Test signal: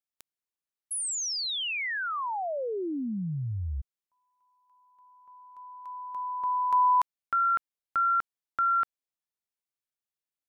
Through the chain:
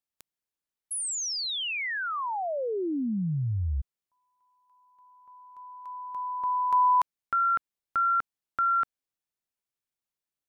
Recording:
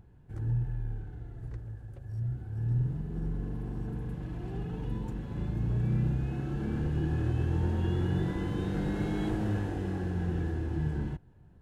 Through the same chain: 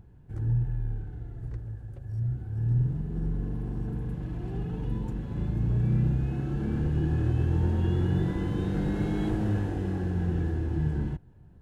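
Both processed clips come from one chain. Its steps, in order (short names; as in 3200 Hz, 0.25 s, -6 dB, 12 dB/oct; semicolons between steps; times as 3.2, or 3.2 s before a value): low shelf 410 Hz +4 dB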